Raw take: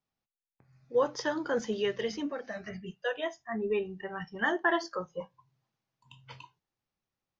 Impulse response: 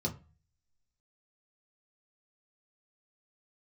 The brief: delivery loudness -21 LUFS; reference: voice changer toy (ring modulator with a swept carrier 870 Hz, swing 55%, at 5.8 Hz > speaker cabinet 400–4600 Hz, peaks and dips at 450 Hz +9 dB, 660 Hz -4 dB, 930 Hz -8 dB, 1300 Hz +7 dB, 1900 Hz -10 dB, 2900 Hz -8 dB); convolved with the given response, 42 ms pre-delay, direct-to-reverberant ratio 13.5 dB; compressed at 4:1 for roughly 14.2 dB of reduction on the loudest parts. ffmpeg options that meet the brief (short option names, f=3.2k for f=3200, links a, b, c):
-filter_complex "[0:a]acompressor=threshold=-39dB:ratio=4,asplit=2[a][b];[1:a]atrim=start_sample=2205,adelay=42[c];[b][c]afir=irnorm=-1:irlink=0,volume=-17dB[d];[a][d]amix=inputs=2:normalize=0,aeval=exprs='val(0)*sin(2*PI*870*n/s+870*0.55/5.8*sin(2*PI*5.8*n/s))':c=same,highpass=400,equalizer=f=450:t=q:w=4:g=9,equalizer=f=660:t=q:w=4:g=-4,equalizer=f=930:t=q:w=4:g=-8,equalizer=f=1.3k:t=q:w=4:g=7,equalizer=f=1.9k:t=q:w=4:g=-10,equalizer=f=2.9k:t=q:w=4:g=-8,lowpass=f=4.6k:w=0.5412,lowpass=f=4.6k:w=1.3066,volume=25.5dB"